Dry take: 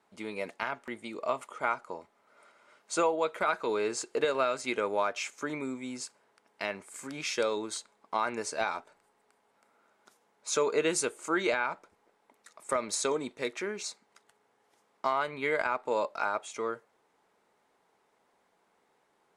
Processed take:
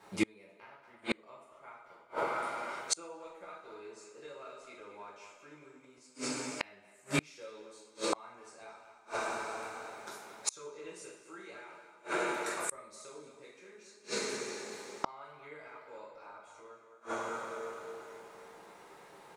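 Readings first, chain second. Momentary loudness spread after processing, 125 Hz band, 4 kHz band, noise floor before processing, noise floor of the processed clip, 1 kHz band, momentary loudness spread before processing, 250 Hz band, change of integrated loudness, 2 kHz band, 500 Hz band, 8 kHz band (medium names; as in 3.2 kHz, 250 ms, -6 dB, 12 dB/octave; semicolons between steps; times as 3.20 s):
19 LU, +0.5 dB, -4.0 dB, -72 dBFS, -61 dBFS, -7.5 dB, 12 LU, -4.0 dB, -7.5 dB, -6.5 dB, -10.0 dB, -3.5 dB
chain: speakerphone echo 220 ms, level -7 dB; two-slope reverb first 0.57 s, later 3.2 s, from -17 dB, DRR -6 dB; inverted gate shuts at -25 dBFS, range -35 dB; trim +8.5 dB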